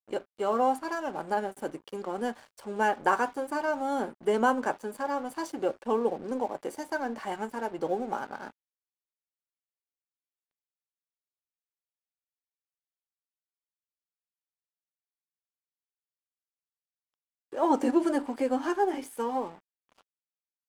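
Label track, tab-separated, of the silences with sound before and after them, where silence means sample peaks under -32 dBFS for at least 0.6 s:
8.480000	17.530000	silence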